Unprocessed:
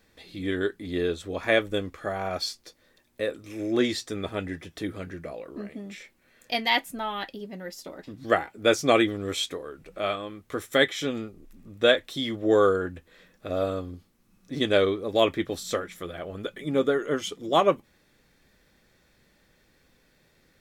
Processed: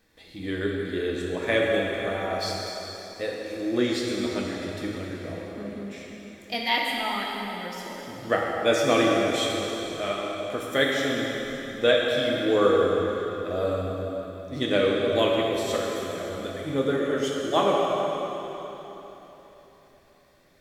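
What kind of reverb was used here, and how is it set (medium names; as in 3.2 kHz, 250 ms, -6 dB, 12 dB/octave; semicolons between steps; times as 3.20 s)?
plate-style reverb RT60 3.8 s, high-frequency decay 0.9×, DRR -2.5 dB; trim -3 dB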